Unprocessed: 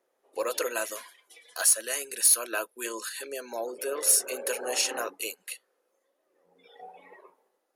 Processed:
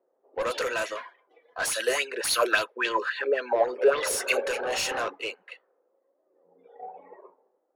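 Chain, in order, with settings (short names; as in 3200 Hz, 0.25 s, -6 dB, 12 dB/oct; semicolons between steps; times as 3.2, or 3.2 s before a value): low-pass opened by the level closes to 560 Hz, open at -24 dBFS; high shelf 5600 Hz -4.5 dB; overdrive pedal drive 17 dB, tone 4000 Hz, clips at -15 dBFS; soft clip -21 dBFS, distortion -19 dB; 1.63–4.4 LFO bell 3.6 Hz 390–4200 Hz +14 dB; gain -1 dB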